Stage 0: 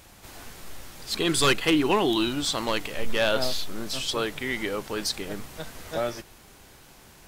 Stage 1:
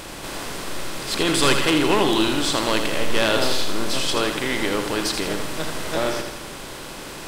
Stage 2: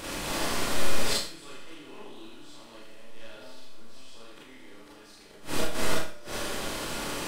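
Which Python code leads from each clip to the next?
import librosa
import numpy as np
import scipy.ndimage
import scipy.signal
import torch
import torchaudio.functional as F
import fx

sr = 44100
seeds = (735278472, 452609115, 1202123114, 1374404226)

y1 = fx.bin_compress(x, sr, power=0.6)
y1 = fx.echo_feedback(y1, sr, ms=81, feedback_pct=52, wet_db=-7)
y2 = fx.gate_flip(y1, sr, shuts_db=-14.0, range_db=-29)
y2 = fx.rev_schroeder(y2, sr, rt60_s=0.45, comb_ms=27, drr_db=-5.5)
y2 = y2 * librosa.db_to_amplitude(-5.5)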